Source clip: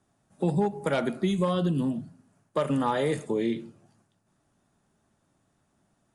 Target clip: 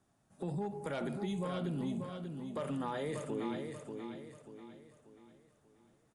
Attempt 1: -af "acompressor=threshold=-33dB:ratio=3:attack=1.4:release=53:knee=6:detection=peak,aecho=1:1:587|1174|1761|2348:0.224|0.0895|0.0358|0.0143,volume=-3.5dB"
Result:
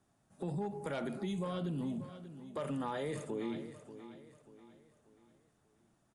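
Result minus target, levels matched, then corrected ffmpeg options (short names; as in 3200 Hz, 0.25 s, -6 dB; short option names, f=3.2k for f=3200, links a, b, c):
echo-to-direct -7 dB
-af "acompressor=threshold=-33dB:ratio=3:attack=1.4:release=53:knee=6:detection=peak,aecho=1:1:587|1174|1761|2348|2935:0.501|0.2|0.0802|0.0321|0.0128,volume=-3.5dB"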